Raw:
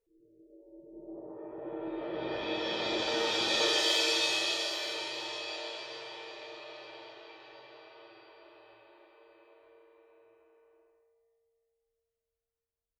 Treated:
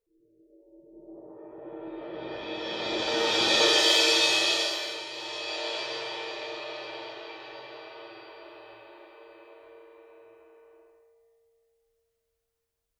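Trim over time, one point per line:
2.52 s -1.5 dB
3.46 s +6.5 dB
4.60 s +6.5 dB
5.06 s -1 dB
5.78 s +9 dB

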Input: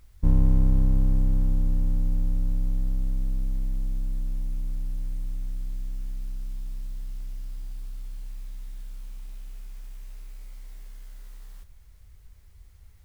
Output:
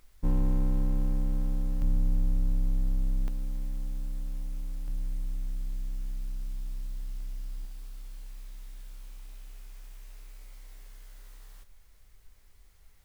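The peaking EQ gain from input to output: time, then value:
peaking EQ 74 Hz 2.1 oct
-14 dB
from 1.82 s -3.5 dB
from 3.28 s -13 dB
from 4.88 s -4.5 dB
from 7.65 s -14 dB

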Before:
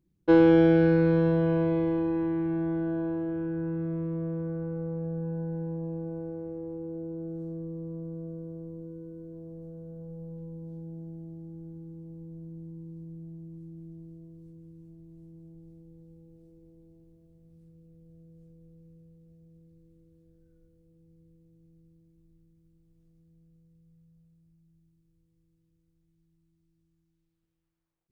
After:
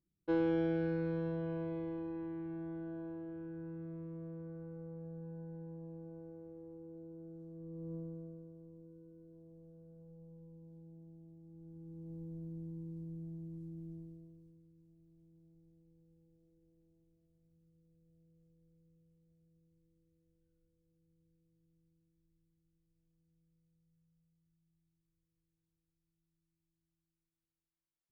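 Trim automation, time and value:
7.52 s -14 dB
7.94 s -5 dB
8.54 s -14.5 dB
11.42 s -14.5 dB
12.15 s -2.5 dB
13.95 s -2.5 dB
14.68 s -15.5 dB

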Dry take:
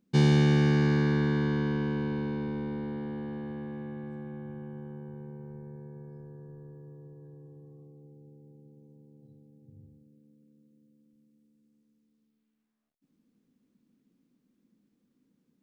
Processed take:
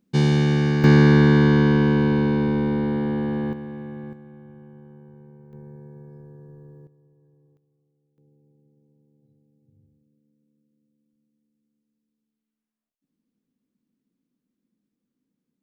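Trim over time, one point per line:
+3 dB
from 0.84 s +12 dB
from 3.53 s +4 dB
from 4.13 s -4 dB
from 5.53 s +2 dB
from 6.87 s -10.5 dB
from 7.57 s -20 dB
from 8.18 s -7.5 dB

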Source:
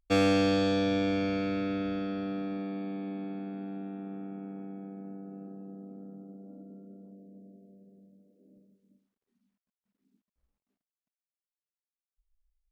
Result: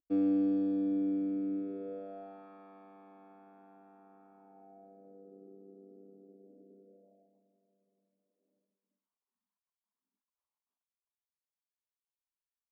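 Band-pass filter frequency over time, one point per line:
band-pass filter, Q 4.3
1.54 s 300 Hz
2.48 s 1 kHz
4.34 s 1 kHz
5.43 s 410 Hz
6.79 s 410 Hz
7.48 s 1 kHz

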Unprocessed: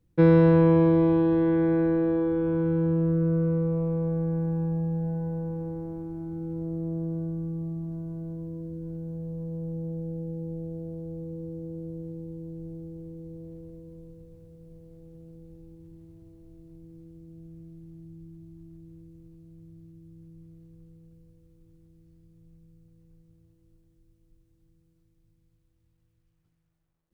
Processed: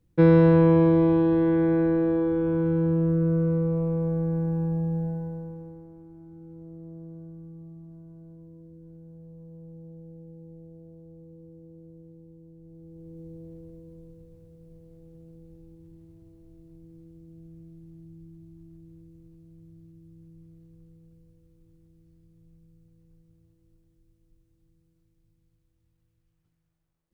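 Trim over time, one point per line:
4.99 s +1 dB
5.89 s -11.5 dB
12.61 s -11.5 dB
13.20 s -1.5 dB

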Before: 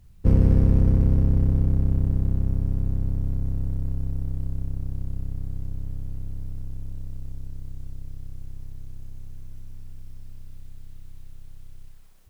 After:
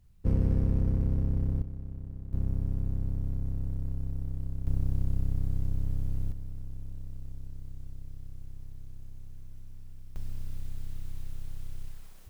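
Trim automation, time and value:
-8.5 dB
from 1.62 s -18 dB
from 2.33 s -6 dB
from 4.67 s +1.5 dB
from 6.32 s -6 dB
from 10.16 s +5 dB

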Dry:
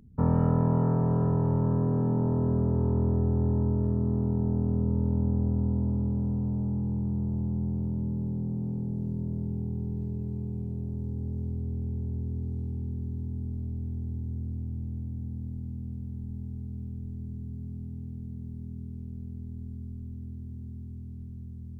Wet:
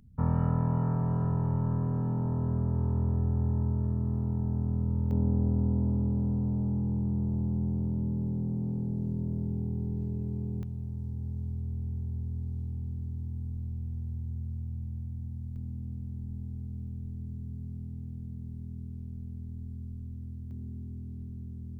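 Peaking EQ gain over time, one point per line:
peaking EQ 390 Hz 1.9 oct
-10 dB
from 5.11 s -0.5 dB
from 10.63 s -12 dB
from 15.56 s -5.5 dB
from 20.51 s +2 dB

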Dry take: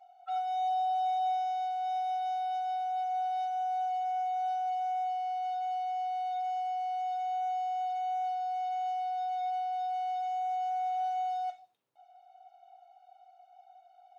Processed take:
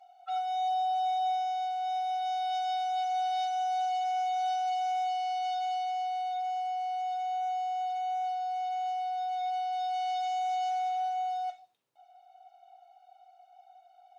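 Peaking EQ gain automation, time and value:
peaking EQ 4.8 kHz 2.5 oct
2.10 s +6 dB
2.63 s +14.5 dB
5.60 s +14.5 dB
6.38 s +5 dB
9.26 s +5 dB
10.14 s +14.5 dB
10.68 s +14.5 dB
11.11 s +3.5 dB

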